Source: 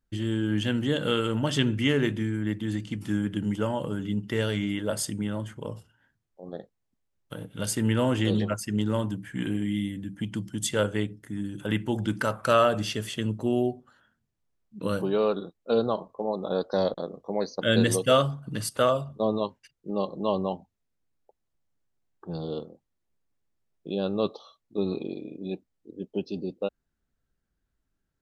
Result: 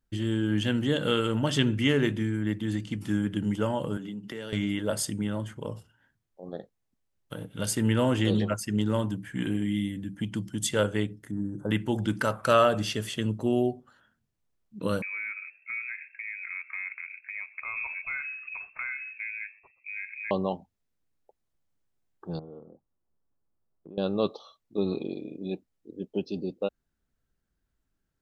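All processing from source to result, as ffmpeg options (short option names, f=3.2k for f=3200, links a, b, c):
-filter_complex "[0:a]asettb=1/sr,asplit=3[a][b][c];[a]atrim=end=3.974[d];[b]atrim=start=3.97:end=4.53,asetpts=PTS-STARTPTS,afade=t=in:d=0.004:c=qsin,afade=t=out:st=0.556:d=0.004:c=qsin,highpass=f=140:w=0.5412,highpass=f=140:w=1.3066,acompressor=threshold=-35dB:ratio=4:attack=3.2:release=140:knee=1:detection=peak[e];[c]atrim=start=4.526[f];[d][e]acrossfade=d=0.004:c1=hsin:c2=qsin[g];[g][f]acrossfade=d=0.004:c1=qsin:c2=hsin,asettb=1/sr,asplit=3[h][i][j];[h]atrim=end=11.314[k];[i]atrim=start=11.31:end=11.71,asetpts=PTS-STARTPTS,afade=t=in:d=0.004:c=qsin,afade=t=out:st=0.396:d=0.004:c=qsin,asuperstop=centerf=2800:order=4:qfactor=0.51,aemphasis=mode=reproduction:type=75fm[l];[j]atrim=start=11.706[m];[k][l]acrossfade=d=0.004:c1=hsin:c2=qsin[n];[n][m]acrossfade=d=0.004:c1=qsin:c2=hsin,asettb=1/sr,asplit=3[o][p][q];[o]atrim=end=15.024[r];[p]atrim=start=15.02:end=20.31,asetpts=PTS-STARTPTS,afade=t=in:d=0.004:c=qsin,afade=t=out:st=5.286:d=0.004:c=qsin,acompressor=threshold=-37dB:ratio=2.5:attack=3.2:release=140:knee=1:detection=peak,asplit=5[s][t][u][v][w];[t]adelay=124,afreqshift=-130,volume=-22dB[x];[u]adelay=248,afreqshift=-260,volume=-27.5dB[y];[v]adelay=372,afreqshift=-390,volume=-33dB[z];[w]adelay=496,afreqshift=-520,volume=-38.5dB[aa];[s][x][y][z][aa]amix=inputs=5:normalize=0,atrim=end_sample=233289,lowpass=f=2.3k:t=q:w=0.5098,lowpass=f=2.3k:t=q:w=0.6013,lowpass=f=2.3k:t=q:w=0.9,lowpass=f=2.3k:t=q:w=2.563,afreqshift=-2700[ab];[q]atrim=start=20.306[ac];[r][ab]acrossfade=d=0.004:c1=hsin:c2=qsin[ad];[ad][ac]acrossfade=d=0.004:c1=qsin:c2=hsin,asettb=1/sr,asplit=3[ae][af][ag];[ae]atrim=end=22.394[ah];[af]atrim=start=22.39:end=23.98,asetpts=PTS-STARTPTS,afade=t=in:d=0.004:c=qsin,afade=t=out:st=1.586:d=0.004:c=qsin,lowpass=f=1.4k:w=0.5412,lowpass=f=1.4k:w=1.3066,acompressor=threshold=-45dB:ratio=3:attack=3.2:release=140:knee=1:detection=peak[ai];[ag]atrim=start=23.976[aj];[ah][ai]acrossfade=d=0.004:c1=hsin:c2=qsin[ak];[ak][aj]acrossfade=d=0.004:c1=qsin:c2=hsin"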